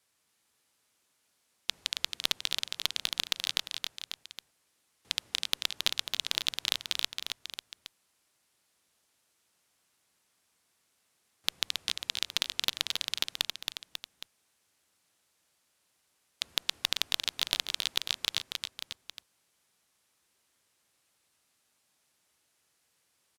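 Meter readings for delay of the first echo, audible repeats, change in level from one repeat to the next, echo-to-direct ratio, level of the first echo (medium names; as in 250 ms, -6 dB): 272 ms, 3, -4.5 dB, -4.0 dB, -5.5 dB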